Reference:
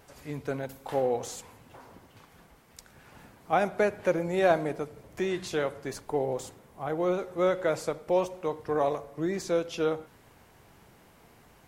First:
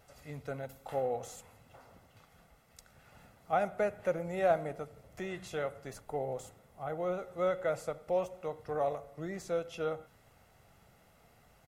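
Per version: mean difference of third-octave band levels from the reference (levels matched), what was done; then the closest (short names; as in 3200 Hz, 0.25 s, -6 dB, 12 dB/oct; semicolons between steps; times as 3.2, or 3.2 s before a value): 2.0 dB: comb 1.5 ms, depth 48%; dynamic EQ 4700 Hz, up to -6 dB, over -52 dBFS, Q 1.3; gain -7 dB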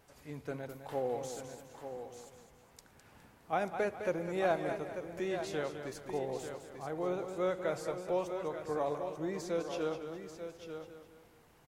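4.5 dB: on a send: echo 0.89 s -9 dB; on the sum: warbling echo 0.206 s, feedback 41%, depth 70 cents, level -9 dB; gain -8 dB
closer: first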